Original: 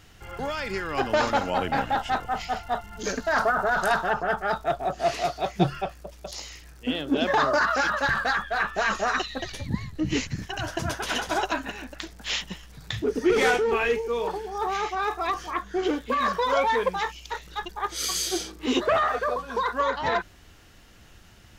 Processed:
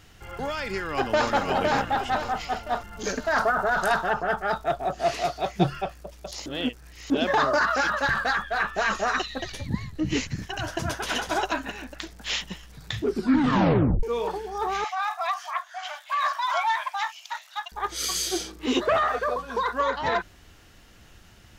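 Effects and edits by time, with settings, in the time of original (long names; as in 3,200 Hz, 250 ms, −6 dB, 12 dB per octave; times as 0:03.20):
0:00.80–0:01.30: delay throw 510 ms, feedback 45%, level −3 dB
0:06.46–0:07.10: reverse
0:13.05: tape stop 0.98 s
0:14.84–0:17.72: linear-phase brick-wall high-pass 590 Hz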